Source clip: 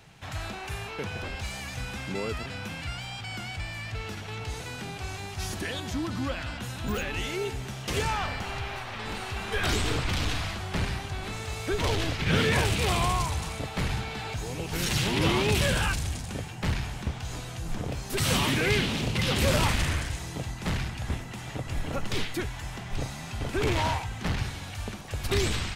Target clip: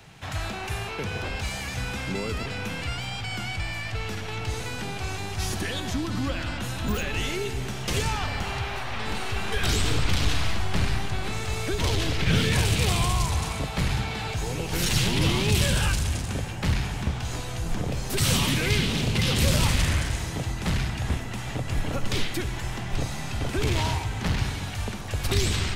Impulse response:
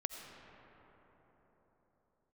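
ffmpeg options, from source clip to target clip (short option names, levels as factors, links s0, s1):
-filter_complex "[0:a]acrossover=split=210|3000[s0][s1][s2];[s1]acompressor=threshold=0.0178:ratio=3[s3];[s0][s3][s2]amix=inputs=3:normalize=0,asplit=2[s4][s5];[1:a]atrim=start_sample=2205,asetrate=70560,aresample=44100[s6];[s5][s6]afir=irnorm=-1:irlink=0,volume=1.26[s7];[s4][s7]amix=inputs=2:normalize=0"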